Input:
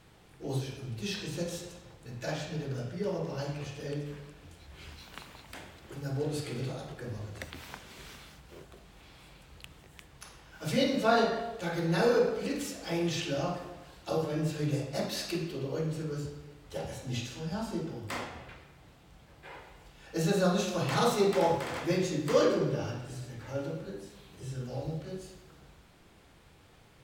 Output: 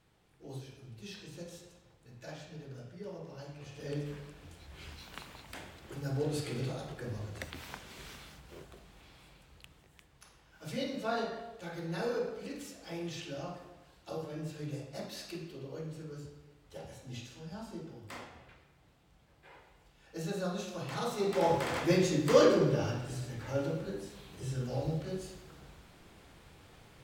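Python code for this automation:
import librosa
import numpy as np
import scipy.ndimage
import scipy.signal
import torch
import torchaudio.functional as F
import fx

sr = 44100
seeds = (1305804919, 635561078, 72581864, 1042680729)

y = fx.gain(x, sr, db=fx.line((3.56, -11.0), (3.97, -0.5), (8.63, -0.5), (10.09, -9.0), (21.1, -9.0), (21.63, 2.0)))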